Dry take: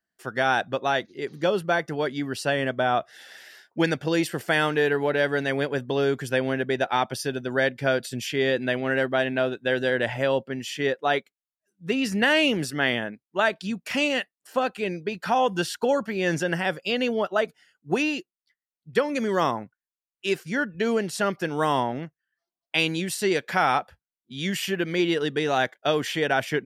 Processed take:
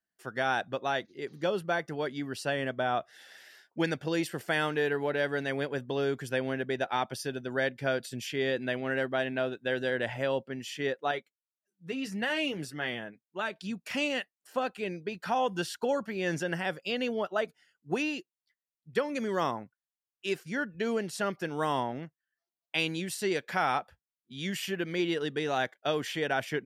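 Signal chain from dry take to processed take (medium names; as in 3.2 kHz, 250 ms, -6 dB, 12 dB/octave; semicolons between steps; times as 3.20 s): 11.11–13.56 s: flange 1.7 Hz, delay 5.2 ms, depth 1.8 ms, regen -41%; trim -6.5 dB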